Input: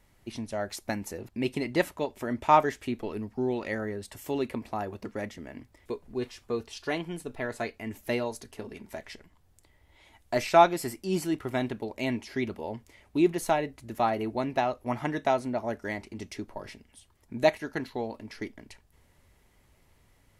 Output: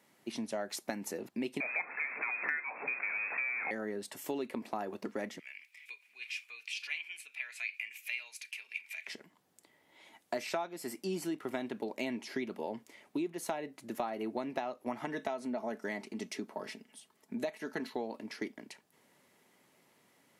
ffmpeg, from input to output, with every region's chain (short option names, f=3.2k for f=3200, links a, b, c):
-filter_complex "[0:a]asettb=1/sr,asplit=3[a][b][c];[a]atrim=end=1.604[d];[b]atrim=start=1.6:end=3.71,asetpts=PTS-STARTPTS,afade=t=in:d=0.004:c=qsin,afade=t=out:st=2.106:d=0.004:c=qsin,aeval=exprs='val(0)+0.5*0.0422*sgn(val(0))':c=same,highpass=f=260:p=1,lowpass=f=2.3k:t=q:w=0.5098,lowpass=f=2.3k:t=q:w=0.6013,lowpass=f=2.3k:t=q:w=0.9,lowpass=f=2.3k:t=q:w=2.563,afreqshift=-2700[e];[c]atrim=start=3.706[f];[d][e]acrossfade=d=0.004:c1=hsin:c2=qsin[g];[g][f]acrossfade=d=0.004:c1=qsin:c2=hsin,asettb=1/sr,asplit=3[h][i][j];[h]atrim=end=5.394[k];[i]atrim=start=5.39:end=9.07,asetpts=PTS-STARTPTS,afade=t=in:d=0.004:c=qsin,afade=t=out:st=3.676:d=0.004:c=qsin,acompressor=threshold=-44dB:ratio=2:attack=3.2:release=140:knee=1:detection=peak,highpass=f=2.4k:t=q:w=12[l];[j]atrim=start=9.066[m];[k][l]acrossfade=d=0.004:c1=hsin:c2=qsin[n];[n][m]acrossfade=d=0.004:c1=qsin:c2=hsin,asettb=1/sr,asplit=3[o][p][q];[o]atrim=end=15.054[r];[p]atrim=start=15.05:end=17.95,asetpts=PTS-STARTPTS,afade=t=in:d=0.004:c=qsin,afade=t=out:st=2.896:d=0.004:c=qsin,aecho=1:1:4.6:0.33,atrim=end_sample=127890,acompressor=threshold=-34dB:ratio=1.5:attack=3.2:release=140:knee=1:detection=peak[s];[q]atrim=start=17.946[t];[r][s]acrossfade=d=0.004:c1=hsin:c2=qsin[u];[u][t]acrossfade=d=0.004:c1=qsin:c2=hsin,highpass=f=180:w=0.5412,highpass=f=180:w=1.3066,acompressor=threshold=-32dB:ratio=16"